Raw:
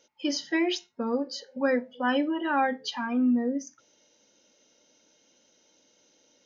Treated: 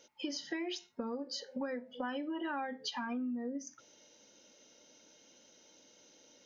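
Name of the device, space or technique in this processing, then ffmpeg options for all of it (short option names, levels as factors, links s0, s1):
serial compression, peaks first: -af "acompressor=threshold=0.0224:ratio=10,acompressor=threshold=0.00631:ratio=1.5,volume=1.26"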